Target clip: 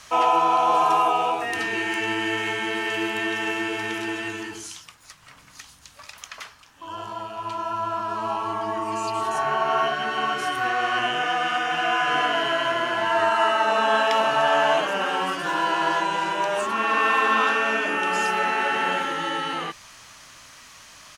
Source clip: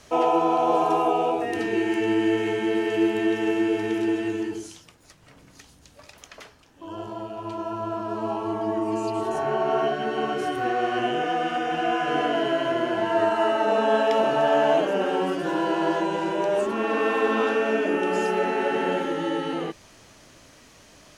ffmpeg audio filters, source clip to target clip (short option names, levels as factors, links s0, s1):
-af "firequalizer=gain_entry='entry(130,0);entry(370,-6);entry(1100,12);entry(1500,10)':delay=0.05:min_phase=1,volume=0.708"